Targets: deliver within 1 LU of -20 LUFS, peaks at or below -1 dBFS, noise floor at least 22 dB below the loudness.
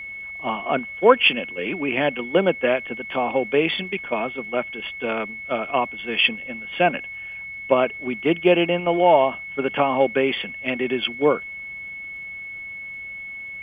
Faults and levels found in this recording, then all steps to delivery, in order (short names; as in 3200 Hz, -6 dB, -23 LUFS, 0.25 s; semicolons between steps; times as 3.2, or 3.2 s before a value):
ticks 29/s; steady tone 2200 Hz; tone level -32 dBFS; loudness -22.5 LUFS; peak -1.5 dBFS; loudness target -20.0 LUFS
-> de-click; notch 2200 Hz, Q 30; gain +2.5 dB; limiter -1 dBFS